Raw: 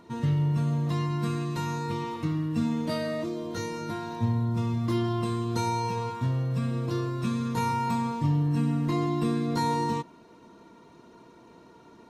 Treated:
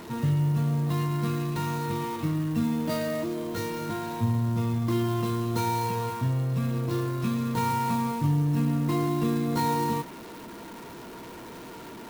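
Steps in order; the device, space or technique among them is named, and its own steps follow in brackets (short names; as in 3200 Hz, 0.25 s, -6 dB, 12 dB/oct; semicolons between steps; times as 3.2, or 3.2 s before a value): early CD player with a faulty converter (zero-crossing step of -38.5 dBFS; clock jitter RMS 0.028 ms)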